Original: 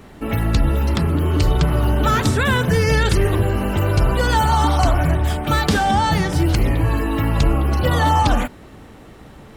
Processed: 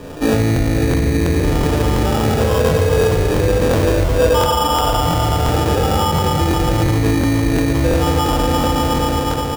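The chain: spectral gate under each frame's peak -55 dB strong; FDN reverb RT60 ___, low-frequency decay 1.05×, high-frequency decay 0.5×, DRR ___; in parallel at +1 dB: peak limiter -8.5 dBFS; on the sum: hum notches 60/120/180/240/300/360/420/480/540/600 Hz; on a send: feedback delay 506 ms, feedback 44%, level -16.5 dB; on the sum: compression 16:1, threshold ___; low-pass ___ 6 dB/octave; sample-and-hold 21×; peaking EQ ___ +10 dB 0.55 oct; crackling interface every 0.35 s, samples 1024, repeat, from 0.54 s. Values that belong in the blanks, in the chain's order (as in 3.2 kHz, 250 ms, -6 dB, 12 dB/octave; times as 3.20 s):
3.3 s, -4 dB, -12 dBFS, 1.1 kHz, 520 Hz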